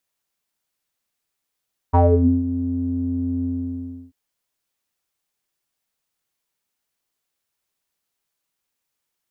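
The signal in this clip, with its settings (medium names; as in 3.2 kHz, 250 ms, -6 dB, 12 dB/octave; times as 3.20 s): synth note square F2 12 dB/octave, low-pass 250 Hz, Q 7.5, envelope 2 oct, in 0.34 s, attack 19 ms, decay 0.48 s, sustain -15 dB, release 0.68 s, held 1.51 s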